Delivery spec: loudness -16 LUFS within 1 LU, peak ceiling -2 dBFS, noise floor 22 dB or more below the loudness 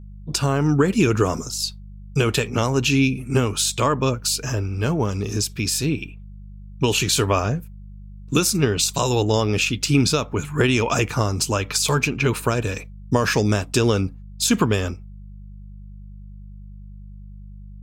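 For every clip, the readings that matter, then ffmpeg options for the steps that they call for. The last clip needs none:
hum 50 Hz; highest harmonic 200 Hz; hum level -37 dBFS; loudness -21.0 LUFS; peak level -4.0 dBFS; loudness target -16.0 LUFS
-> -af "bandreject=f=50:t=h:w=4,bandreject=f=100:t=h:w=4,bandreject=f=150:t=h:w=4,bandreject=f=200:t=h:w=4"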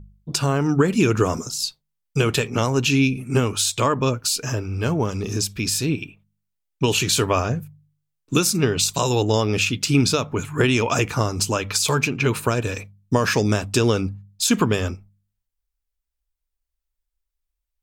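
hum not found; loudness -21.5 LUFS; peak level -4.5 dBFS; loudness target -16.0 LUFS
-> -af "volume=1.88,alimiter=limit=0.794:level=0:latency=1"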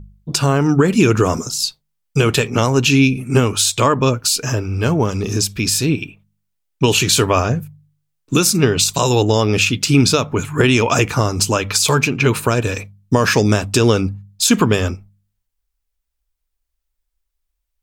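loudness -16.0 LUFS; peak level -2.0 dBFS; noise floor -75 dBFS

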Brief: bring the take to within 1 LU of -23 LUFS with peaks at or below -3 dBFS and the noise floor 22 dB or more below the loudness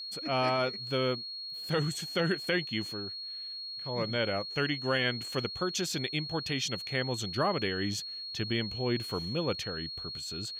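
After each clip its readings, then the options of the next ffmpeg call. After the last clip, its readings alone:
steady tone 4.3 kHz; tone level -38 dBFS; loudness -32.0 LUFS; peak level -17.5 dBFS; loudness target -23.0 LUFS
-> -af "bandreject=f=4300:w=30"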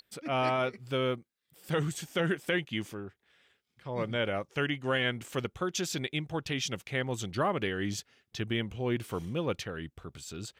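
steady tone not found; loudness -33.0 LUFS; peak level -18.5 dBFS; loudness target -23.0 LUFS
-> -af "volume=3.16"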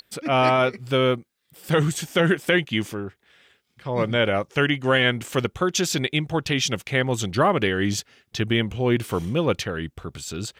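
loudness -23.0 LUFS; peak level -8.5 dBFS; noise floor -72 dBFS

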